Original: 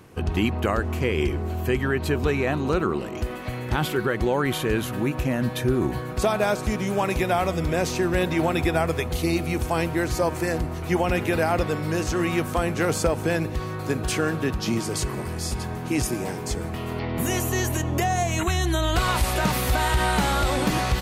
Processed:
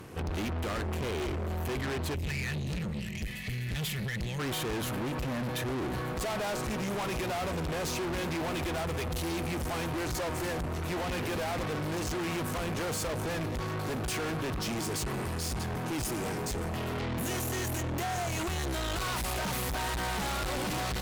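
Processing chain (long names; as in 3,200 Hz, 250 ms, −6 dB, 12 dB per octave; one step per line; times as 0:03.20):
gain on a spectral selection 0:02.14–0:04.40, 230–1,700 Hz −23 dB
tube saturation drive 36 dB, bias 0.45
level +4.5 dB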